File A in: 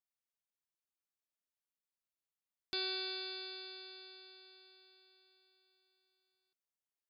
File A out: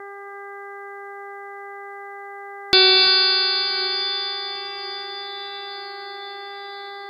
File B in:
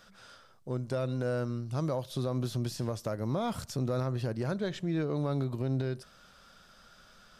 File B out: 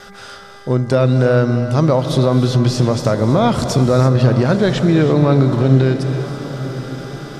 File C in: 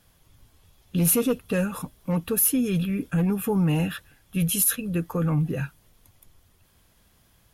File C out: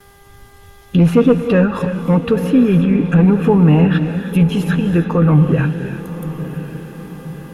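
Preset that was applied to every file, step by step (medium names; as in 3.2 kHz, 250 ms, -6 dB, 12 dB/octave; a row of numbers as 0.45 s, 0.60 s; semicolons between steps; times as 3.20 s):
mains buzz 400 Hz, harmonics 5, -61 dBFS -3 dB/octave; gate with hold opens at -54 dBFS; low-pass that closes with the level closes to 1.9 kHz, closed at -22 dBFS; echo that smears into a reverb 1049 ms, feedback 53%, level -13.5 dB; gated-style reverb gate 360 ms rising, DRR 8.5 dB; peak normalisation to -1.5 dBFS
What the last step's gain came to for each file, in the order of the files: +24.5 dB, +18.0 dB, +12.0 dB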